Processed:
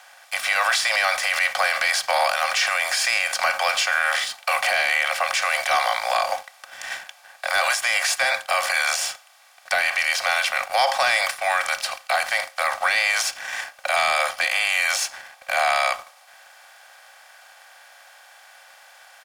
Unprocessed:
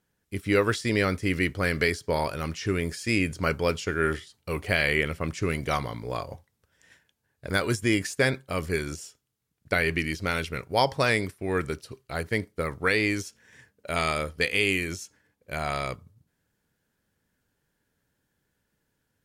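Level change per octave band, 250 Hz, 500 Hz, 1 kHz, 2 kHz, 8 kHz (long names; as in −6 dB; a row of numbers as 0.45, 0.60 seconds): below −25 dB, −0.5 dB, +10.0 dB, +8.5 dB, +13.0 dB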